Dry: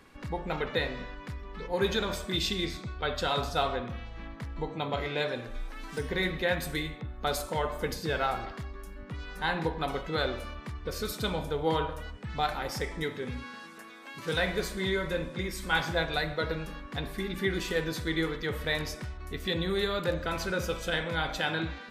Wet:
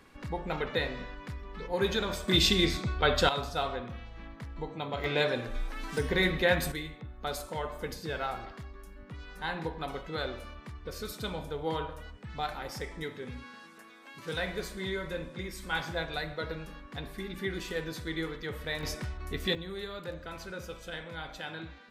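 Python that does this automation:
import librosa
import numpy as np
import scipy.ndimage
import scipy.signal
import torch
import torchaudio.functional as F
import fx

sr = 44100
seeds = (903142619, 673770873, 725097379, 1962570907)

y = fx.gain(x, sr, db=fx.steps((0.0, -1.0), (2.28, 6.0), (3.29, -3.5), (5.04, 3.0), (6.72, -5.0), (18.83, 1.5), (19.55, -10.0)))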